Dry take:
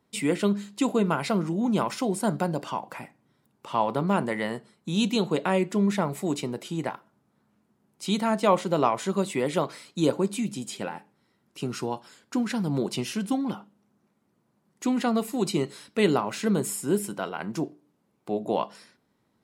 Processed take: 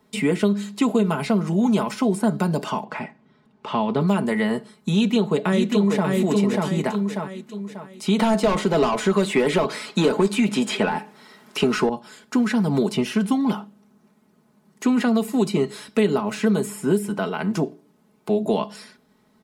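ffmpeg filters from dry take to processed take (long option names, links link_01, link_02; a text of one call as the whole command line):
ffmpeg -i in.wav -filter_complex "[0:a]asettb=1/sr,asplit=3[link_01][link_02][link_03];[link_01]atrim=end=2.844[link_04];[link_02]atrim=start=2.84:end=4.01,asetpts=PTS-STARTPTS,afade=type=in:duration=0.004:curve=qsin,afade=type=out:start_time=1.166:duration=0.004:curve=qsin,lowpass=3800[link_05];[link_03]atrim=start=4.006[link_06];[link_04][link_05]acrossfade=duration=0.004:curve1=hsin:curve2=qsin[link_07];[link_07][link_06]acrossfade=duration=0.004:curve1=qsin:curve2=hsin,asplit=2[link_08][link_09];[link_09]afade=type=in:start_time=4.93:duration=0.01,afade=type=out:start_time=6.09:duration=0.01,aecho=0:1:590|1180|1770|2360|2950:0.668344|0.23392|0.0818721|0.0286552|0.0100293[link_10];[link_08][link_10]amix=inputs=2:normalize=0,asettb=1/sr,asplit=3[link_11][link_12][link_13];[link_11]atrim=end=8.194[link_14];[link_12]atrim=start=8.19:end=11.89,asetpts=PTS-STARTPTS,afade=type=in:duration=0.004:curve=qsin,afade=type=out:start_time=3.696:duration=0.004:curve=qsin,asplit=2[link_15][link_16];[link_16]highpass=frequency=720:poles=1,volume=21dB,asoftclip=type=tanh:threshold=-7.5dB[link_17];[link_15][link_17]amix=inputs=2:normalize=0,lowpass=frequency=6800:poles=1,volume=-6dB[link_18];[link_13]atrim=start=11.886[link_19];[link_14][link_18]acrossfade=duration=0.004:curve1=hsin:curve2=qsin[link_20];[link_20][link_19]acrossfade=duration=0.004:curve1=qsin:curve2=hsin,aecho=1:1:4.7:0.64,acrossover=split=390|2600[link_21][link_22][link_23];[link_21]acompressor=threshold=-28dB:ratio=4[link_24];[link_22]acompressor=threshold=-34dB:ratio=4[link_25];[link_23]acompressor=threshold=-47dB:ratio=4[link_26];[link_24][link_25][link_26]amix=inputs=3:normalize=0,volume=8.5dB" out.wav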